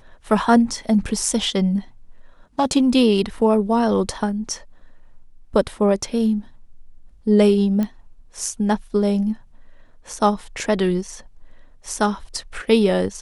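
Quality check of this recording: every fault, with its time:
7.83 s: pop -13 dBFS

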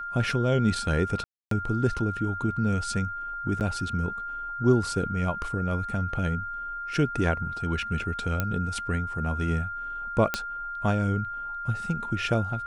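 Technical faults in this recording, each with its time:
whine 1.4 kHz -32 dBFS
1.24–1.51 s: dropout 273 ms
3.60–3.61 s: dropout 8.7 ms
8.40 s: pop -12 dBFS
10.34 s: pop -9 dBFS

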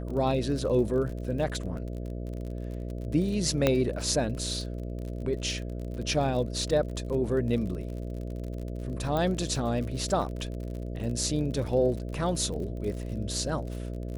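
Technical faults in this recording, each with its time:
buzz 60 Hz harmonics 11 -35 dBFS
crackle 47 per s -36 dBFS
3.67 s: pop -9 dBFS
9.17 s: pop -17 dBFS

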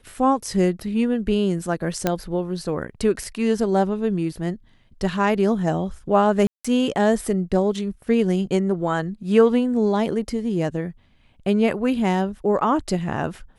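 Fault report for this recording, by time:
2.07 s: pop -6 dBFS
6.47–6.64 s: dropout 175 ms

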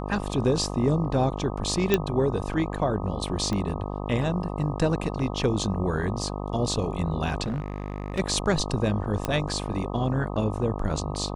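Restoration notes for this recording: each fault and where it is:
buzz 50 Hz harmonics 25 -32 dBFS
1.94 s: pop -7 dBFS
3.53 s: pop -17 dBFS
7.43–8.20 s: clipped -25 dBFS
9.25 s: pop -12 dBFS

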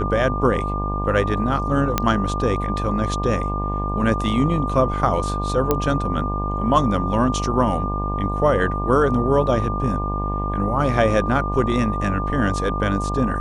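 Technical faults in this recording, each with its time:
buzz 50 Hz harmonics 22 -25 dBFS
whine 1.2 kHz -26 dBFS
1.98 s: pop -3 dBFS
5.71 s: pop -5 dBFS

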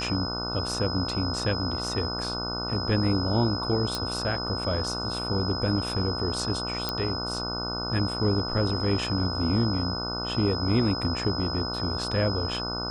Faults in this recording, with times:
buzz 60 Hz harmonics 25 -34 dBFS
whine 5.1 kHz -32 dBFS
3.95 s: pop
6.89 s: pop -12 dBFS

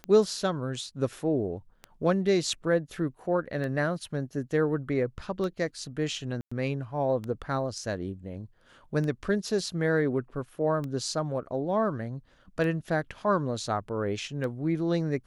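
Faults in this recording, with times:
tick 33 1/3 rpm -23 dBFS
6.41–6.51 s: dropout 105 ms

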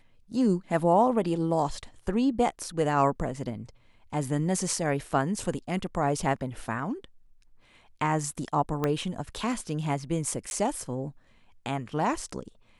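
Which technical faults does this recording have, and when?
8.84 s: pop -14 dBFS
10.50–10.51 s: dropout

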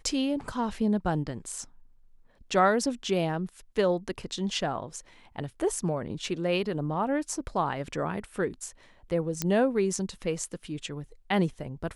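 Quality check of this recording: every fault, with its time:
9.42 s: pop -11 dBFS

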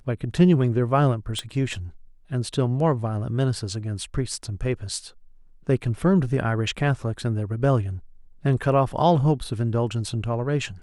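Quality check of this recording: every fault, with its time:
1.39 s: pop -15 dBFS

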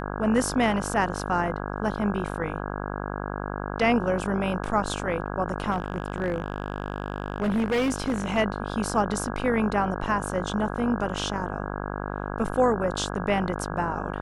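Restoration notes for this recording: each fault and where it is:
buzz 50 Hz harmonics 33 -32 dBFS
5.71–8.38 s: clipped -20.5 dBFS

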